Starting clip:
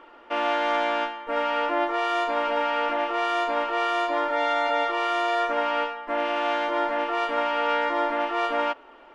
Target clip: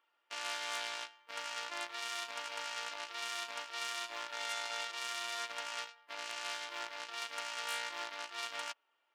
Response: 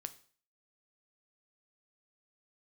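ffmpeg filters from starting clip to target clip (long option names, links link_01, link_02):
-af "aeval=exprs='0.299*(cos(1*acos(clip(val(0)/0.299,-1,1)))-cos(1*PI/2))+0.0335*(cos(7*acos(clip(val(0)/0.299,-1,1)))-cos(7*PI/2))':channel_layout=same,aderivative"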